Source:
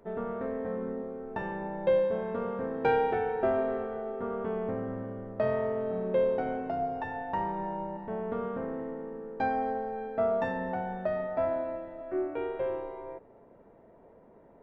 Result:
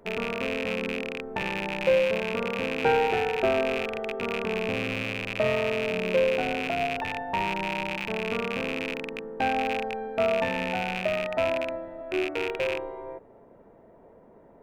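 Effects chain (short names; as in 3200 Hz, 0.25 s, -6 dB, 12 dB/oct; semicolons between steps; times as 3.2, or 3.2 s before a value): rattling part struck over -44 dBFS, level -22 dBFS; gain +3 dB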